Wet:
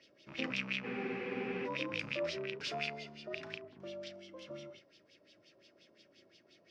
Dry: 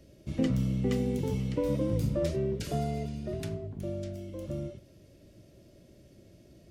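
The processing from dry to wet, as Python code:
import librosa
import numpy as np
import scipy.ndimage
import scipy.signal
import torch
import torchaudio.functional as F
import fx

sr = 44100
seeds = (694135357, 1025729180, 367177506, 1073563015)

p1 = fx.rattle_buzz(x, sr, strikes_db=-28.0, level_db=-29.0)
p2 = scipy.signal.sosfilt(scipy.signal.butter(2, 510.0, 'highpass', fs=sr, output='sos'), p1)
p3 = fx.peak_eq(p2, sr, hz=5300.0, db=11.0, octaves=0.52)
p4 = p3 + fx.room_flutter(p3, sr, wall_m=6.1, rt60_s=0.29, dry=0)
p5 = fx.filter_lfo_lowpass(p4, sr, shape='sine', hz=5.7, low_hz=940.0, high_hz=3500.0, q=2.8)
p6 = fx.peak_eq(p5, sr, hz=700.0, db=-10.0, octaves=2.5)
p7 = fx.spec_freeze(p6, sr, seeds[0], at_s=0.86, hold_s=0.81)
y = F.gain(torch.from_numpy(p7), 2.5).numpy()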